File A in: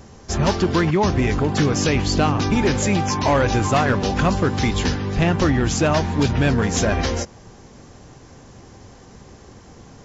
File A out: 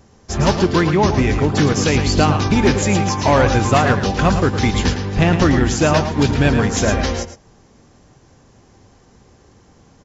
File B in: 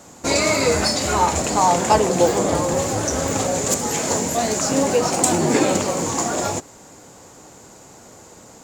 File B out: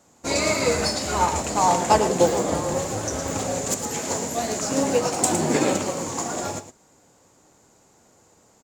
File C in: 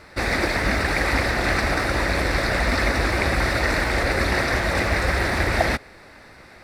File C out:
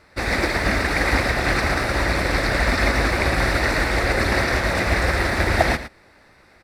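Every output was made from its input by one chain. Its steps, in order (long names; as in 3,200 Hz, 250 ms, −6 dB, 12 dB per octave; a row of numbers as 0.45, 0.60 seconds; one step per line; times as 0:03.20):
on a send: single-tap delay 111 ms −7.5 dB
on the sum: expander for the loud parts 1.5 to 1, over −36 dBFS
normalise the peak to −3 dBFS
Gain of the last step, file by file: +4.0, −1.5, +3.0 decibels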